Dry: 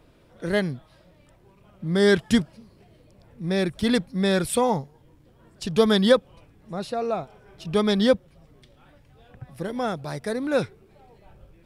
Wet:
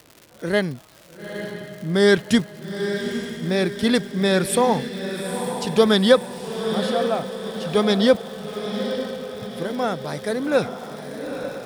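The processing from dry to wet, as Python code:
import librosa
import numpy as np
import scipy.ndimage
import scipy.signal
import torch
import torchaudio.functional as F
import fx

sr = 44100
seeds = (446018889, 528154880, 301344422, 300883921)

y = fx.dmg_crackle(x, sr, seeds[0], per_s=180.0, level_db=-36.0)
y = fx.highpass(y, sr, hz=160.0, slope=6)
y = fx.echo_diffused(y, sr, ms=881, feedback_pct=51, wet_db=-8.0)
y = F.gain(torch.from_numpy(y), 3.5).numpy()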